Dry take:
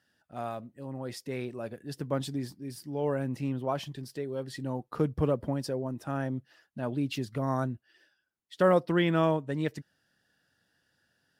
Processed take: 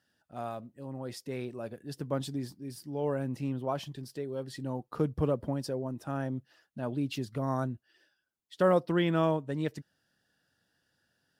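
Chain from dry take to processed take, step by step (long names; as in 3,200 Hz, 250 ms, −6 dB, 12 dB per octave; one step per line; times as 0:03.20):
parametric band 2,000 Hz −3 dB 0.77 octaves
level −1.5 dB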